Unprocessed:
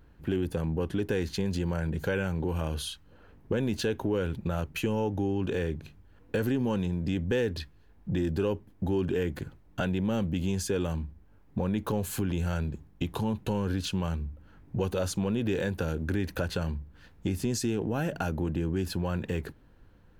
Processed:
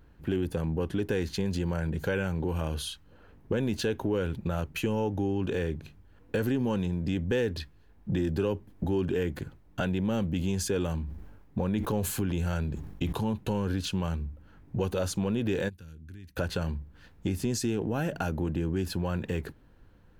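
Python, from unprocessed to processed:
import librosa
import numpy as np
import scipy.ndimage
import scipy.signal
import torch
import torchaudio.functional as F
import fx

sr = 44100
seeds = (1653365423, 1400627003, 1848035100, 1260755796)

y = fx.band_squash(x, sr, depth_pct=40, at=(8.09, 8.84))
y = fx.sustainer(y, sr, db_per_s=53.0, at=(10.28, 13.13))
y = fx.tone_stack(y, sr, knobs='6-0-2', at=(15.68, 16.36), fade=0.02)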